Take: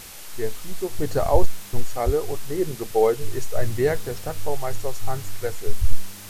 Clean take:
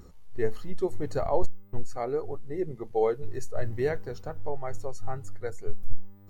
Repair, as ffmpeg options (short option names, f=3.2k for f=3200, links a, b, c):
-filter_complex "[0:a]asplit=3[a][b][c];[a]afade=t=out:st=1.32:d=0.02[d];[b]highpass=f=140:w=0.5412,highpass=f=140:w=1.3066,afade=t=in:st=1.32:d=0.02,afade=t=out:st=1.44:d=0.02[e];[c]afade=t=in:st=1.44:d=0.02[f];[d][e][f]amix=inputs=3:normalize=0,asplit=3[g][h][i];[g]afade=t=out:st=2.05:d=0.02[j];[h]highpass=f=140:w=0.5412,highpass=f=140:w=1.3066,afade=t=in:st=2.05:d=0.02,afade=t=out:st=2.17:d=0.02[k];[i]afade=t=in:st=2.17:d=0.02[l];[j][k][l]amix=inputs=3:normalize=0,asplit=3[m][n][o];[m]afade=t=out:st=5.8:d=0.02[p];[n]highpass=f=140:w=0.5412,highpass=f=140:w=1.3066,afade=t=in:st=5.8:d=0.02,afade=t=out:st=5.92:d=0.02[q];[o]afade=t=in:st=5.92:d=0.02[r];[p][q][r]amix=inputs=3:normalize=0,afwtdn=0.01,asetnsamples=n=441:p=0,asendcmd='0.99 volume volume -6.5dB',volume=0dB"